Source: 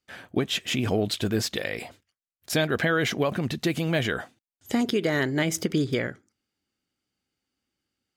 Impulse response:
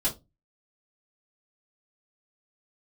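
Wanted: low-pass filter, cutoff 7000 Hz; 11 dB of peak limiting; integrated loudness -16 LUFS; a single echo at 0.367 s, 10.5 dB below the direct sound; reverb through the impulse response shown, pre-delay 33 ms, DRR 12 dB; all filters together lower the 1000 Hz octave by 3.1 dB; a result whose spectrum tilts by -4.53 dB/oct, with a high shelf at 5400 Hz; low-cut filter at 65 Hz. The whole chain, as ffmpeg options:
-filter_complex "[0:a]highpass=65,lowpass=7k,equalizer=f=1k:t=o:g=-4.5,highshelf=f=5.4k:g=-3.5,alimiter=limit=-24dB:level=0:latency=1,aecho=1:1:367:0.299,asplit=2[a][b];[1:a]atrim=start_sample=2205,adelay=33[c];[b][c]afir=irnorm=-1:irlink=0,volume=-19dB[d];[a][d]amix=inputs=2:normalize=0,volume=17.5dB"

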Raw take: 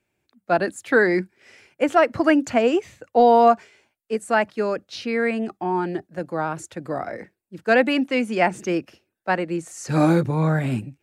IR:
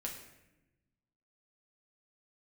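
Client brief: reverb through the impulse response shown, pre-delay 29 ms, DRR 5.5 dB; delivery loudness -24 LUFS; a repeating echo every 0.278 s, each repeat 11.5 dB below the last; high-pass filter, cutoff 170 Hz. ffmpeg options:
-filter_complex "[0:a]highpass=170,aecho=1:1:278|556|834:0.266|0.0718|0.0194,asplit=2[a][b];[1:a]atrim=start_sample=2205,adelay=29[c];[b][c]afir=irnorm=-1:irlink=0,volume=-5dB[d];[a][d]amix=inputs=2:normalize=0,volume=-3dB"

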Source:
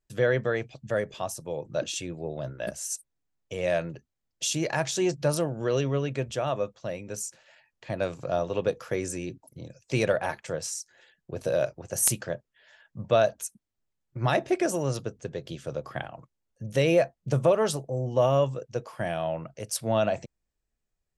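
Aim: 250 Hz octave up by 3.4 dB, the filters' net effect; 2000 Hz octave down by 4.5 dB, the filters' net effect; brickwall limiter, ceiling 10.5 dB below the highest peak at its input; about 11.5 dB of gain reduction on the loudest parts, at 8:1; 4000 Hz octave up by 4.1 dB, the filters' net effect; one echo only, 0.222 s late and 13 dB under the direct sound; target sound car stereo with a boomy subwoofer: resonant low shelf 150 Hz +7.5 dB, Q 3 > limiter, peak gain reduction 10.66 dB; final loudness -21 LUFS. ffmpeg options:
-af "equalizer=f=250:t=o:g=6.5,equalizer=f=2k:t=o:g=-8.5,equalizer=f=4k:t=o:g=8,acompressor=threshold=-28dB:ratio=8,alimiter=level_in=3dB:limit=-24dB:level=0:latency=1,volume=-3dB,lowshelf=f=150:t=q:w=3:g=7.5,aecho=1:1:222:0.224,volume=16.5dB,alimiter=limit=-11.5dB:level=0:latency=1"

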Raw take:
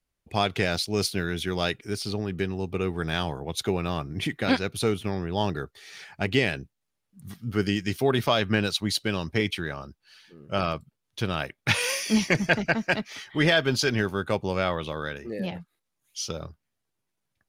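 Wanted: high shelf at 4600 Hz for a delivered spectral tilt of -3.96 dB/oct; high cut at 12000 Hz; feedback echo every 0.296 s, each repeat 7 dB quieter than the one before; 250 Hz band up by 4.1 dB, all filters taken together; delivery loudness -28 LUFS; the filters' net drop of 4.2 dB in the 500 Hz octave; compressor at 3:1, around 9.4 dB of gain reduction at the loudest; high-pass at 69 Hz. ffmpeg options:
-af "highpass=69,lowpass=12k,equalizer=f=250:t=o:g=7.5,equalizer=f=500:t=o:g=-8.5,highshelf=f=4.6k:g=8,acompressor=threshold=-26dB:ratio=3,aecho=1:1:296|592|888|1184|1480:0.447|0.201|0.0905|0.0407|0.0183,volume=1.5dB"

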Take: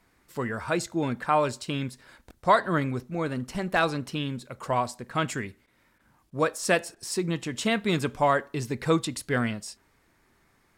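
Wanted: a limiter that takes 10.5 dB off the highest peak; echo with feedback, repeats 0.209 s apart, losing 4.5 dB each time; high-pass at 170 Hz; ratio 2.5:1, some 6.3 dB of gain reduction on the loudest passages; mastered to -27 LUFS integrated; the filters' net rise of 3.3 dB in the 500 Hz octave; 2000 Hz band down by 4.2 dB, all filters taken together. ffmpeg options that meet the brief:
-af "highpass=170,equalizer=f=500:t=o:g=4.5,equalizer=f=2k:t=o:g=-6,acompressor=threshold=-24dB:ratio=2.5,alimiter=limit=-22.5dB:level=0:latency=1,aecho=1:1:209|418|627|836|1045|1254|1463|1672|1881:0.596|0.357|0.214|0.129|0.0772|0.0463|0.0278|0.0167|0.01,volume=5.5dB"

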